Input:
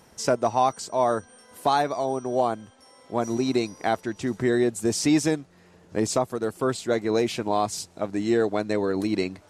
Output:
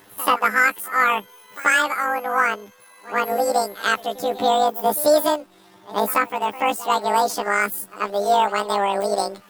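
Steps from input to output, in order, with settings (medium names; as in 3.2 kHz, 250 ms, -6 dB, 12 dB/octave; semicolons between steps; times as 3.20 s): rotating-head pitch shifter +12 st; pre-echo 86 ms -17.5 dB; trim +5 dB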